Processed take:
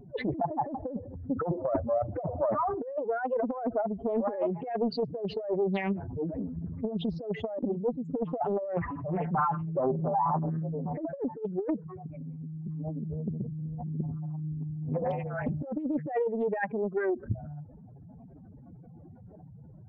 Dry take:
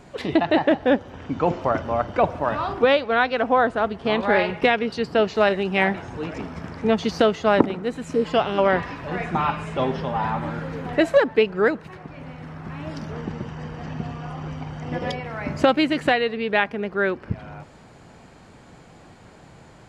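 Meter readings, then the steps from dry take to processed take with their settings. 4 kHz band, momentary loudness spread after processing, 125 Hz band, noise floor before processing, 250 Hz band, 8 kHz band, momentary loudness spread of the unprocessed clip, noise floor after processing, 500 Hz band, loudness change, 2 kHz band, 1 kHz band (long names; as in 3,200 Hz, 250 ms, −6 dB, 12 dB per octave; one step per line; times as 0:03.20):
−20.0 dB, 16 LU, −2.5 dB, −48 dBFS, −7.5 dB, can't be measured, 14 LU, −50 dBFS, −9.0 dB, −9.5 dB, −18.0 dB, −9.0 dB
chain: expanding power law on the bin magnitudes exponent 3.7
compressor whose output falls as the input rises −23 dBFS, ratio −0.5
highs frequency-modulated by the lows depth 0.71 ms
level −4.5 dB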